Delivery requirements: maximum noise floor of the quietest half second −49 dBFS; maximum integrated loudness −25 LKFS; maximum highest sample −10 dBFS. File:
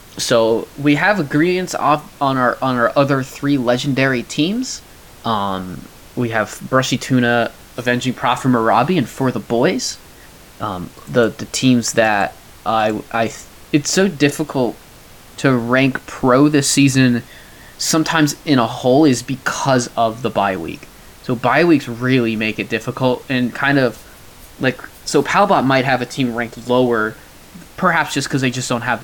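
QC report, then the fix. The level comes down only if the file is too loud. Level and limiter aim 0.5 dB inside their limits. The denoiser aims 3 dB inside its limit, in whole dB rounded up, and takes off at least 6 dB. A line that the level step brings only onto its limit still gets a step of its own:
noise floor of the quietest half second −41 dBFS: out of spec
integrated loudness −17.0 LKFS: out of spec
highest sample −2.0 dBFS: out of spec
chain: level −8.5 dB

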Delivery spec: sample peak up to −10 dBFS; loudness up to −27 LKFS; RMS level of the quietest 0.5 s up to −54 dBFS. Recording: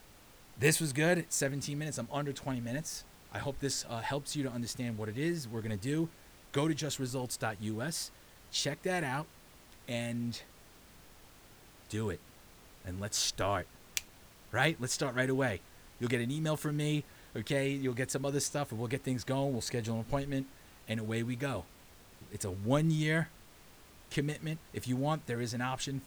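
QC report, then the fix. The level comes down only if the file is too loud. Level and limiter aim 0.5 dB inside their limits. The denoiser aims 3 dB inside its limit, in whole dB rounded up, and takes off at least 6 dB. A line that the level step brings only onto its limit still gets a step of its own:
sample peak −15.5 dBFS: in spec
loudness −35.0 LKFS: in spec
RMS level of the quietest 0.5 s −57 dBFS: in spec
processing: no processing needed

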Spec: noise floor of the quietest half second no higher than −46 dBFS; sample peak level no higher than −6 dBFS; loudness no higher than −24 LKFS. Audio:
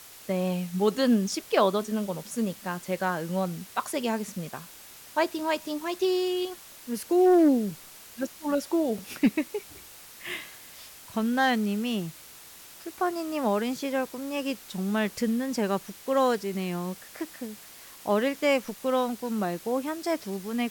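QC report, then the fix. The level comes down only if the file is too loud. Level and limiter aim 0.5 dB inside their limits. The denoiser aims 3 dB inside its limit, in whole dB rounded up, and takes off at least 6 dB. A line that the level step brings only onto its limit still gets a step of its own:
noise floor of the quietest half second −48 dBFS: in spec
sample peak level −10.0 dBFS: in spec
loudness −28.0 LKFS: in spec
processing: no processing needed

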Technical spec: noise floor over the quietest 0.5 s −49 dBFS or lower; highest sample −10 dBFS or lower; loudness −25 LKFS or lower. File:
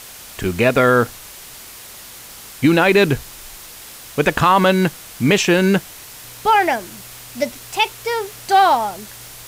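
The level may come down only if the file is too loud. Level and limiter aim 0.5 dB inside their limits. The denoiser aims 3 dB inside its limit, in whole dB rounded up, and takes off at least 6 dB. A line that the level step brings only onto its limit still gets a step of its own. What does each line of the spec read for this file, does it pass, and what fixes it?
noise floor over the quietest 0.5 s −38 dBFS: out of spec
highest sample −4.0 dBFS: out of spec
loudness −17.0 LKFS: out of spec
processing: broadband denoise 6 dB, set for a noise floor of −38 dBFS
level −8.5 dB

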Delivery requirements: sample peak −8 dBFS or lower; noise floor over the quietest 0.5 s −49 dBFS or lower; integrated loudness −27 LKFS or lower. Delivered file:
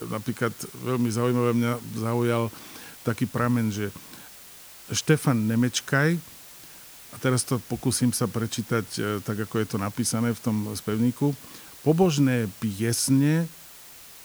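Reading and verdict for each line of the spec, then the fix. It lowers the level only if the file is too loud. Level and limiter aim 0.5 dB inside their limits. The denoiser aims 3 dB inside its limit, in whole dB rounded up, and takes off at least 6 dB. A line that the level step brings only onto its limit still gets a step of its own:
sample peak −6.5 dBFS: out of spec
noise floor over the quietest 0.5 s −46 dBFS: out of spec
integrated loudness −25.5 LKFS: out of spec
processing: broadband denoise 6 dB, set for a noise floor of −46 dBFS
level −2 dB

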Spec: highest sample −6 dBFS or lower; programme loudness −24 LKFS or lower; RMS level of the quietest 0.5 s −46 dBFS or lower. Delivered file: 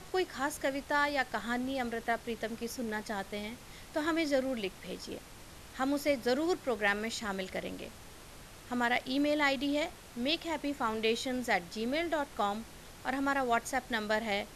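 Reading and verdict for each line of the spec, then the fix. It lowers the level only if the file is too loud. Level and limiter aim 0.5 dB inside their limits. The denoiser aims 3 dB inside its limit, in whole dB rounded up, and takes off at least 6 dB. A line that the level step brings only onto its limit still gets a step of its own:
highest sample −17.0 dBFS: in spec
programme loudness −33.5 LKFS: in spec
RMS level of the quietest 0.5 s −51 dBFS: in spec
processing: no processing needed

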